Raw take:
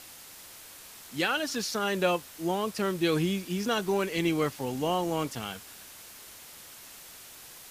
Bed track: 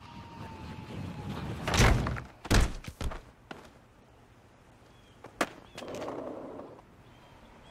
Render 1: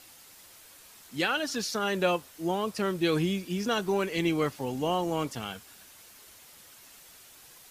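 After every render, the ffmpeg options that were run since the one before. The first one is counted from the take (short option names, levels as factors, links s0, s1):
-af "afftdn=nr=6:nf=-49"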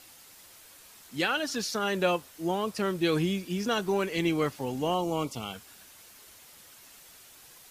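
-filter_complex "[0:a]asettb=1/sr,asplit=3[s0][s1][s2];[s0]atrim=end=4.944[s3];[s1]atrim=start=4.94:end=5.54,asetpts=PTS-STARTPTS,afade=t=in:d=0.004:c=qsin,afade=t=out:st=0.596:d=0.004:c=qsin,asuperstop=centerf=1700:order=4:qfactor=2.4[s4];[s2]atrim=start=5.536[s5];[s3][s4]acrossfade=d=0.004:c1=hsin:c2=qsin[s6];[s6][s5]acrossfade=d=0.004:c1=qsin:c2=hsin"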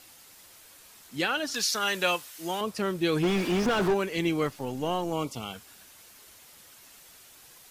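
-filter_complex "[0:a]asettb=1/sr,asplit=3[s0][s1][s2];[s0]atrim=end=1.544[s3];[s1]atrim=start=1.54:end=2.61,asetpts=PTS-STARTPTS,afade=t=in:d=0.004:c=qsin,afade=t=out:st=1.066:d=0.004:c=qsin,tiltshelf=f=870:g=-7.5[s4];[s2]atrim=start=2.606[s5];[s3][s4]acrossfade=d=0.004:c1=hsin:c2=qsin[s6];[s6][s5]acrossfade=d=0.004:c1=qsin:c2=hsin,asplit=3[s7][s8][s9];[s7]afade=t=out:st=3.22:d=0.02[s10];[s8]asplit=2[s11][s12];[s12]highpass=f=720:p=1,volume=56.2,asoftclip=type=tanh:threshold=0.15[s13];[s11][s13]amix=inputs=2:normalize=0,lowpass=f=1100:p=1,volume=0.501,afade=t=in:st=3.22:d=0.02,afade=t=out:st=3.93:d=0.02[s14];[s9]afade=t=in:st=3.93:d=0.02[s15];[s10][s14][s15]amix=inputs=3:normalize=0,asettb=1/sr,asplit=3[s16][s17][s18];[s16]atrim=end=4.474[s19];[s17]atrim=start=4.47:end=5.13,asetpts=PTS-STARTPTS,afade=t=in:d=0.004:c=qsin,afade=t=out:st=0.656:d=0.004:c=qsin,aeval=exprs='if(lt(val(0),0),0.708*val(0),val(0))':c=same[s20];[s18]atrim=start=5.126[s21];[s19][s20]acrossfade=d=0.004:c1=hsin:c2=qsin[s22];[s22][s21]acrossfade=d=0.004:c1=qsin:c2=hsin"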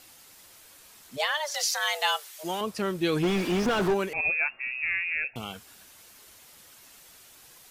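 -filter_complex "[0:a]asplit=3[s0][s1][s2];[s0]afade=t=out:st=1.16:d=0.02[s3];[s1]afreqshift=300,afade=t=in:st=1.16:d=0.02,afade=t=out:st=2.43:d=0.02[s4];[s2]afade=t=in:st=2.43:d=0.02[s5];[s3][s4][s5]amix=inputs=3:normalize=0,asettb=1/sr,asplit=3[s6][s7][s8];[s6]atrim=end=4.134[s9];[s7]atrim=start=4.13:end=5.36,asetpts=PTS-STARTPTS,afade=t=in:d=0.004:c=qsin,afade=t=out:st=1.226:d=0.004:c=qsin,lowpass=f=2400:t=q:w=0.5098,lowpass=f=2400:t=q:w=0.6013,lowpass=f=2400:t=q:w=0.9,lowpass=f=2400:t=q:w=2.563,afreqshift=-2800[s10];[s8]atrim=start=5.356[s11];[s9][s10]acrossfade=d=0.004:c1=hsin:c2=qsin[s12];[s12][s11]acrossfade=d=0.004:c1=qsin:c2=hsin"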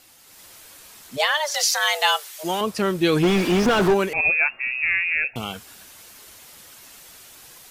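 -af "dynaudnorm=f=220:g=3:m=2.24"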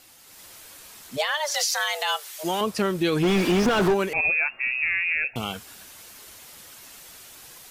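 -af "alimiter=limit=0.188:level=0:latency=1:release=151"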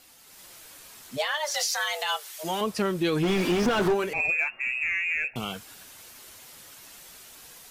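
-filter_complex "[0:a]flanger=delay=4.3:depth=3.8:regen=-62:speed=0.4:shape=sinusoidal,asplit=2[s0][s1];[s1]asoftclip=type=tanh:threshold=0.0376,volume=0.266[s2];[s0][s2]amix=inputs=2:normalize=0"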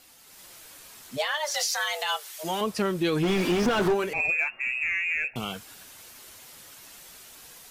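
-af anull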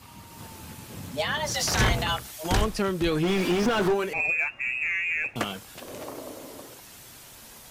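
-filter_complex "[1:a]volume=0.944[s0];[0:a][s0]amix=inputs=2:normalize=0"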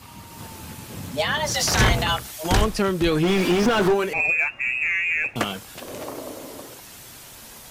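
-af "volume=1.68"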